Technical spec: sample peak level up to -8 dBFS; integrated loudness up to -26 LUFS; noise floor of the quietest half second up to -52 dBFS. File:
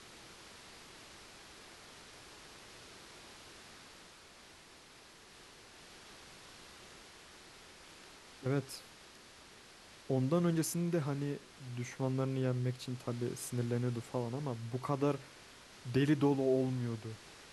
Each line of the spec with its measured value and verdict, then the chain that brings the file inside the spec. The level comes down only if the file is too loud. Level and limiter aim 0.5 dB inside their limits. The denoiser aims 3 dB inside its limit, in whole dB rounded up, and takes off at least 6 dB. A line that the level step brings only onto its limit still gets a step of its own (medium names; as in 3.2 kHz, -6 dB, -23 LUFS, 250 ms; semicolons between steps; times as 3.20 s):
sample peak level -18.5 dBFS: pass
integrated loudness -36.0 LUFS: pass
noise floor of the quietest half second -58 dBFS: pass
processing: none needed